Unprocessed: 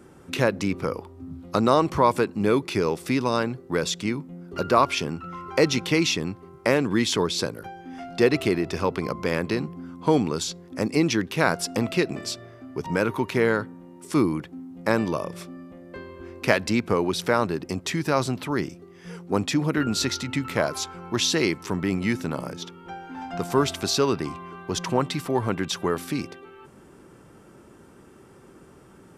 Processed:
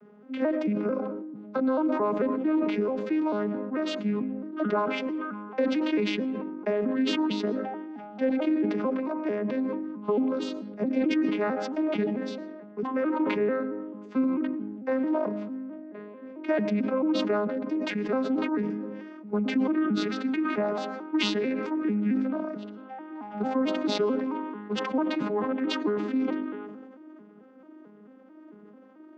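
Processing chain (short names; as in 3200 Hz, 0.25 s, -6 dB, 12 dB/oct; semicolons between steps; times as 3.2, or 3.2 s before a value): arpeggiated vocoder major triad, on G#3, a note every 0.221 s; compressor 6:1, threshold -22 dBFS, peak gain reduction 9 dB; BPF 180–2700 Hz; on a send at -17 dB: reverb RT60 1.0 s, pre-delay 75 ms; on the sum: sustainer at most 33 dB/s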